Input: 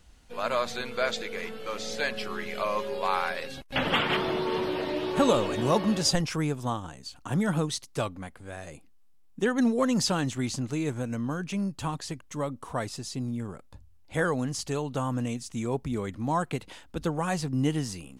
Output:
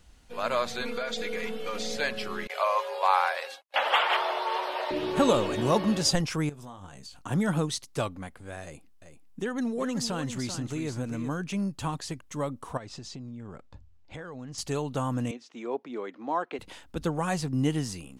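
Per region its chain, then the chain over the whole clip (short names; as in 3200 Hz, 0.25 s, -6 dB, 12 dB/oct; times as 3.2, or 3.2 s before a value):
0.81–1.97 comb 4.2 ms, depth 92% + compressor 12:1, threshold -27 dBFS
2.47–4.91 gate with hold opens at -26 dBFS, closes at -32 dBFS + HPF 570 Hz 24 dB/oct + bell 820 Hz +6.5 dB 1.3 oct
6.49–7.22 bell 310 Hz -6.5 dB 0.24 oct + compressor, threshold -41 dBFS + doubler 21 ms -9 dB
8.63–11.29 compressor 2:1, threshold -31 dBFS + echo 0.387 s -9 dB
12.77–14.58 running mean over 4 samples + compressor 10:1, threshold -37 dBFS
15.31–16.59 HPF 300 Hz 24 dB/oct + air absorption 210 m
whole clip: dry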